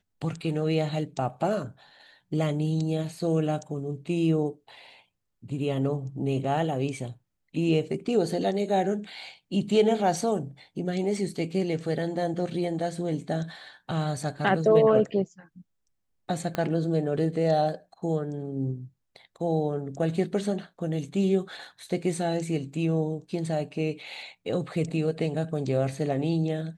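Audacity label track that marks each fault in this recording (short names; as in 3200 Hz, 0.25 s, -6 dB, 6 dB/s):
16.550000	16.550000	pop -15 dBFS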